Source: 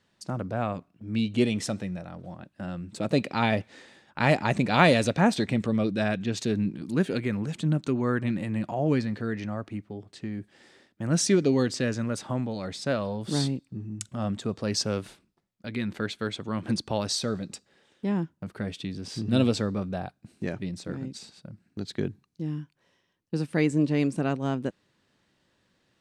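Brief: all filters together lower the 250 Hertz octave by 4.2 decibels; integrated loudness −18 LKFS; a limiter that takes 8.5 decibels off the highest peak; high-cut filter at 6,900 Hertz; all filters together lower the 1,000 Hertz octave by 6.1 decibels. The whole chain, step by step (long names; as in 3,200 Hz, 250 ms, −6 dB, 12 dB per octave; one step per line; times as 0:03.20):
low-pass filter 6,900 Hz
parametric band 250 Hz −5 dB
parametric band 1,000 Hz −8.5 dB
level +14 dB
brickwall limiter −2.5 dBFS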